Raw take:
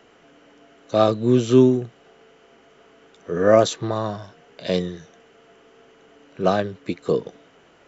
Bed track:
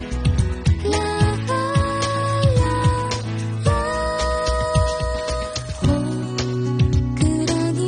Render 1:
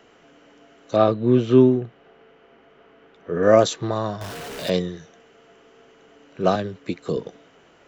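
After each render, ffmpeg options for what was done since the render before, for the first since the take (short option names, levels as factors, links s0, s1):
-filter_complex "[0:a]asettb=1/sr,asplit=3[s0][s1][s2];[s0]atrim=end=0.964[s3];[s1]atrim=start=0.96:end=3.43,asetpts=PTS-STARTPTS,afade=t=in:d=0.004:c=qsin,afade=t=out:st=2.466:d=0.004:c=qsin,lowpass=2900[s4];[s2]atrim=start=3.426[s5];[s3][s4]acrossfade=d=0.004:c1=hsin:c2=qsin[s6];[s6][s5]acrossfade=d=0.004:c1=qsin:c2=hsin,asettb=1/sr,asplit=3[s7][s8][s9];[s7]atrim=end=4.214[s10];[s8]atrim=start=4.21:end=4.7,asetpts=PTS-STARTPTS,afade=t=in:d=0.004:c=qsin,afade=t=out:st=0.486:d=0.004:c=qsin,aeval=exprs='val(0)+0.5*0.0335*sgn(val(0))':c=same[s11];[s9]atrim=start=4.696[s12];[s10][s11]acrossfade=d=0.004:c1=hsin:c2=qsin[s13];[s13][s12]acrossfade=d=0.004:c1=qsin:c2=hsin,asettb=1/sr,asplit=3[s14][s15][s16];[s14]atrim=end=6.554[s17];[s15]atrim=start=6.55:end=7.17,asetpts=PTS-STARTPTS,afade=t=in:d=0.004:c=qsin,afade=t=out:st=0.616:d=0.004:c=qsin,acrossover=split=280|3000[s18][s19][s20];[s19]acompressor=threshold=0.0631:ratio=6:attack=3.2:release=140:knee=2.83:detection=peak[s21];[s18][s21][s20]amix=inputs=3:normalize=0[s22];[s16]atrim=start=7.166[s23];[s17][s22]acrossfade=d=0.004:c1=hsin:c2=qsin[s24];[s24][s23]acrossfade=d=0.004:c1=qsin:c2=hsin"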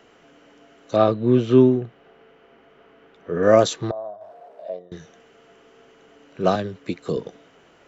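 -filter_complex "[0:a]asettb=1/sr,asplit=3[s0][s1][s2];[s0]atrim=end=3.914[s3];[s1]atrim=start=3.91:end=4.92,asetpts=PTS-STARTPTS,afade=t=in:d=0.004:c=qsin,afade=t=out:st=1.006:d=0.004:c=qsin,bandpass=f=650:t=q:w=7.3[s4];[s2]atrim=start=4.916[s5];[s3][s4]acrossfade=d=0.004:c1=hsin:c2=qsin[s6];[s6][s5]acrossfade=d=0.004:c1=qsin:c2=hsin"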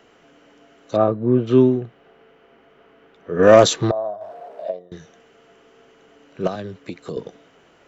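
-filter_complex "[0:a]asplit=3[s0][s1][s2];[s0]afade=t=out:st=0.96:d=0.02[s3];[s1]lowpass=1500,afade=t=in:st=0.96:d=0.02,afade=t=out:st=1.46:d=0.02[s4];[s2]afade=t=in:st=1.46:d=0.02[s5];[s3][s4][s5]amix=inputs=3:normalize=0,asplit=3[s6][s7][s8];[s6]afade=t=out:st=3.38:d=0.02[s9];[s7]acontrast=82,afade=t=in:st=3.38:d=0.02,afade=t=out:st=4.7:d=0.02[s10];[s8]afade=t=in:st=4.7:d=0.02[s11];[s9][s10][s11]amix=inputs=3:normalize=0,asettb=1/sr,asplit=3[s12][s13][s14];[s12]atrim=end=6.474[s15];[s13]atrim=start=6.47:end=7.17,asetpts=PTS-STARTPTS,afade=t=in:d=0.004:c=qsin,afade=t=out:st=0.696:d=0.004:c=qsin,acompressor=threshold=0.0447:ratio=2.5:attack=3.2:release=140:knee=1:detection=peak[s16];[s14]atrim=start=7.166[s17];[s15][s16]acrossfade=d=0.004:c1=hsin:c2=qsin[s18];[s18][s17]acrossfade=d=0.004:c1=qsin:c2=hsin"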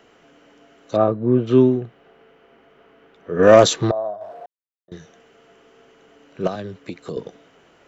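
-filter_complex "[0:a]asplit=3[s0][s1][s2];[s0]atrim=end=4.46,asetpts=PTS-STARTPTS,afade=t=out:st=4.456:d=0.004:c=hsin[s3];[s1]atrim=start=4.46:end=4.88,asetpts=PTS-STARTPTS,volume=0[s4];[s2]atrim=start=4.88,asetpts=PTS-STARTPTS,afade=t=in:d=0.004:c=hsin[s5];[s3][s4][s5]concat=n=3:v=0:a=1"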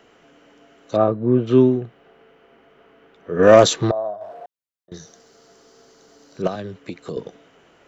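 -filter_complex "[0:a]asettb=1/sr,asplit=3[s0][s1][s2];[s0]atrim=end=4.944[s3];[s1]atrim=start=4.94:end=6.42,asetpts=PTS-STARTPTS,afade=t=in:d=0.004:c=qsin,afade=t=out:st=1.476:d=0.004:c=qsin,highshelf=f=3600:t=q:w=3:g=8.5[s4];[s2]atrim=start=6.416[s5];[s3][s4]acrossfade=d=0.004:c1=hsin:c2=qsin[s6];[s6][s5]acrossfade=d=0.004:c1=qsin:c2=hsin"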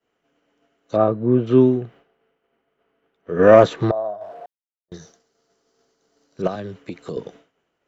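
-filter_complex "[0:a]agate=range=0.0224:threshold=0.00891:ratio=3:detection=peak,acrossover=split=2600[s0][s1];[s1]acompressor=threshold=0.00562:ratio=4:attack=1:release=60[s2];[s0][s2]amix=inputs=2:normalize=0"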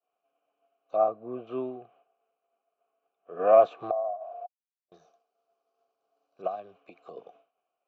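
-filter_complex "[0:a]asplit=3[s0][s1][s2];[s0]bandpass=f=730:t=q:w=8,volume=1[s3];[s1]bandpass=f=1090:t=q:w=8,volume=0.501[s4];[s2]bandpass=f=2440:t=q:w=8,volume=0.355[s5];[s3][s4][s5]amix=inputs=3:normalize=0"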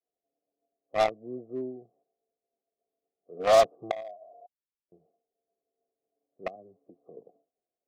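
-filter_complex "[0:a]acrossover=split=320|510[s0][s1][s2];[s1]asoftclip=type=hard:threshold=0.0211[s3];[s2]acrusher=bits=3:mix=0:aa=0.5[s4];[s0][s3][s4]amix=inputs=3:normalize=0"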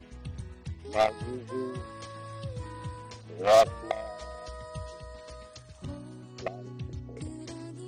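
-filter_complex "[1:a]volume=0.0841[s0];[0:a][s0]amix=inputs=2:normalize=0"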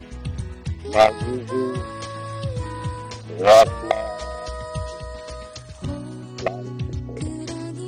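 -af "volume=3.35,alimiter=limit=0.794:level=0:latency=1"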